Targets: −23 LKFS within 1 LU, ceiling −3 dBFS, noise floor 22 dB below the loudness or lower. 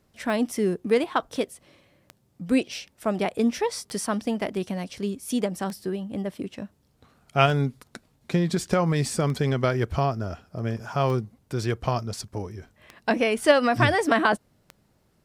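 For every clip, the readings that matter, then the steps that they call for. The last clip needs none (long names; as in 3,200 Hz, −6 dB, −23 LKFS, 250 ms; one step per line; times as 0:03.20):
number of clicks 9; integrated loudness −26.0 LKFS; sample peak −4.0 dBFS; target loudness −23.0 LKFS
→ click removal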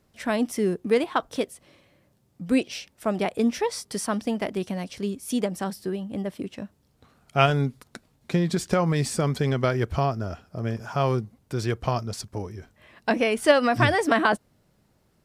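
number of clicks 0; integrated loudness −26.0 LKFS; sample peak −4.0 dBFS; target loudness −23.0 LKFS
→ level +3 dB
brickwall limiter −3 dBFS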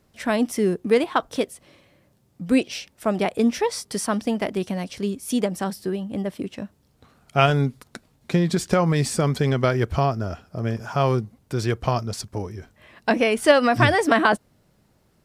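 integrated loudness −23.0 LKFS; sample peak −3.0 dBFS; background noise floor −63 dBFS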